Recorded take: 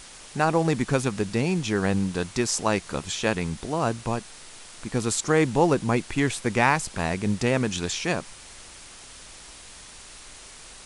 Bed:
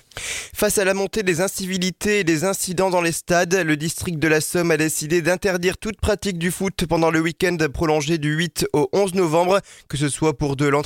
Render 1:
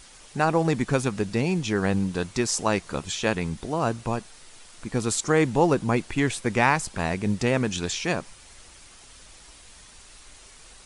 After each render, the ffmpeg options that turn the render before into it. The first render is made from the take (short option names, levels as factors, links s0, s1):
-af "afftdn=nr=6:nf=-45"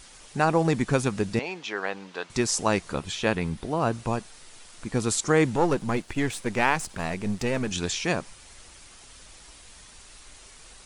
-filter_complex "[0:a]asettb=1/sr,asplit=3[s0][s1][s2];[s0]atrim=end=1.394[s3];[s1]atrim=start=1.39:end=2.3,asetpts=PTS-STARTPTS,afade=t=in:d=0.004:c=qsin,afade=t=out:st=0.906:d=0.004:c=qsin,highpass=600,lowpass=4000[s4];[s2]atrim=start=2.296[s5];[s3][s4]acrossfade=d=0.004:c1=hsin:c2=qsin[s6];[s6][s5]acrossfade=d=0.004:c1=qsin:c2=hsin,asettb=1/sr,asplit=3[s7][s8][s9];[s7]atrim=end=2.934[s10];[s8]atrim=start=2.93:end=3.93,asetpts=PTS-STARTPTS,afade=t=in:d=0.004:c=qsin,afade=t=out:st=0.996:d=0.004:c=qsin,equalizer=f=6900:t=o:w=0.89:g=-6[s11];[s9]atrim=start=3.926[s12];[s10][s11]acrossfade=d=0.004:c1=hsin:c2=qsin[s13];[s13][s12]acrossfade=d=0.004:c1=qsin:c2=hsin,asettb=1/sr,asplit=3[s14][s15][s16];[s14]atrim=end=5.564[s17];[s15]atrim=start=5.56:end=7.71,asetpts=PTS-STARTPTS,afade=t=in:d=0.004:c=qsin,afade=t=out:st=2.146:d=0.004:c=qsin,aeval=exprs='if(lt(val(0),0),0.447*val(0),val(0))':c=same[s18];[s16]atrim=start=7.706[s19];[s17][s18]acrossfade=d=0.004:c1=hsin:c2=qsin[s20];[s20][s19]acrossfade=d=0.004:c1=qsin:c2=hsin"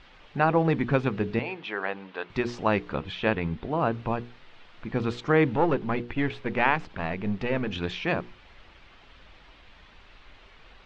-af "lowpass=f=3300:w=0.5412,lowpass=f=3300:w=1.3066,bandreject=f=60:t=h:w=6,bandreject=f=120:t=h:w=6,bandreject=f=180:t=h:w=6,bandreject=f=240:t=h:w=6,bandreject=f=300:t=h:w=6,bandreject=f=360:t=h:w=6,bandreject=f=420:t=h:w=6,bandreject=f=480:t=h:w=6"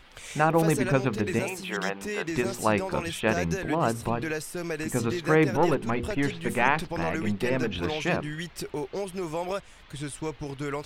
-filter_complex "[1:a]volume=0.2[s0];[0:a][s0]amix=inputs=2:normalize=0"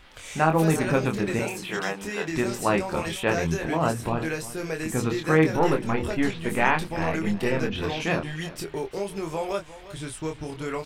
-filter_complex "[0:a]asplit=2[s0][s1];[s1]adelay=25,volume=0.596[s2];[s0][s2]amix=inputs=2:normalize=0,aecho=1:1:350:0.158"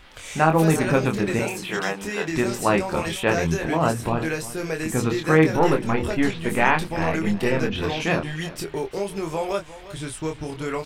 -af "volume=1.41,alimiter=limit=0.708:level=0:latency=1"